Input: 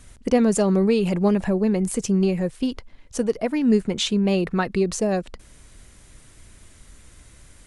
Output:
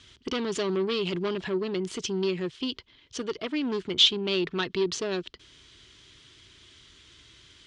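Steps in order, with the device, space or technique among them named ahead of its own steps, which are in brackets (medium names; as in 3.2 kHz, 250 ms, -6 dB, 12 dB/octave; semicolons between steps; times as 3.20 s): guitar amplifier (valve stage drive 19 dB, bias 0.4; tone controls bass -4 dB, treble +15 dB; cabinet simulation 77–4400 Hz, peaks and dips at 210 Hz -8 dB, 370 Hz +5 dB, 540 Hz -10 dB, 770 Hz -9 dB, 3.2 kHz +10 dB); trim -1.5 dB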